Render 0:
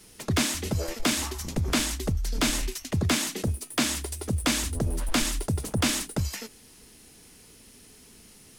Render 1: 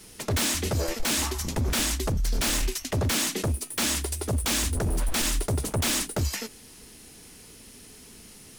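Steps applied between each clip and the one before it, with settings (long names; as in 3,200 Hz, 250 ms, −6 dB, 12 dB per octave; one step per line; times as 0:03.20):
wave folding −24 dBFS
level +4 dB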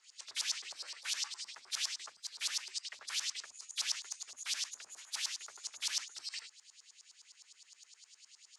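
hearing-aid frequency compression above 3,400 Hz 1.5 to 1
auto-filter band-pass saw up 9.7 Hz 910–5,400 Hz
first difference
level +3.5 dB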